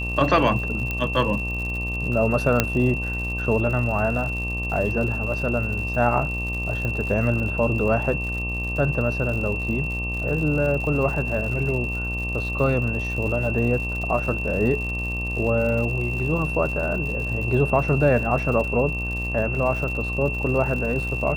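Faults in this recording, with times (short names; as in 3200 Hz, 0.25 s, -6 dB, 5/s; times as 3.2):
buzz 60 Hz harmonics 20 -29 dBFS
crackle 120/s -31 dBFS
tone 2700 Hz -28 dBFS
0.91 pop -13 dBFS
2.6 pop -2 dBFS
6.85 pop -16 dBFS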